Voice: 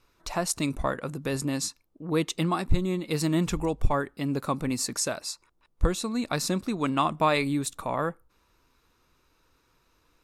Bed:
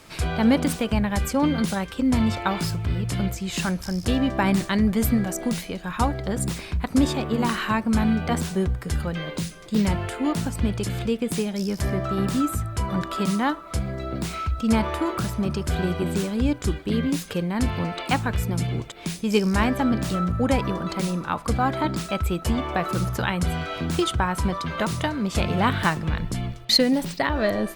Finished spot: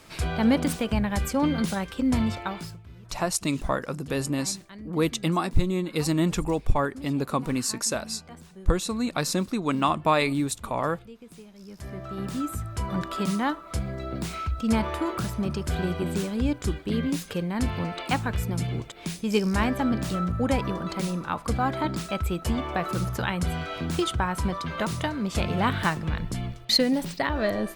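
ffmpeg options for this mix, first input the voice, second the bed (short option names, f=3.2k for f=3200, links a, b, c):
-filter_complex "[0:a]adelay=2850,volume=1.5dB[a];[1:a]volume=16dB,afade=t=out:st=2.13:d=0.71:silence=0.112202,afade=t=in:st=11.58:d=1.41:silence=0.11885[b];[a][b]amix=inputs=2:normalize=0"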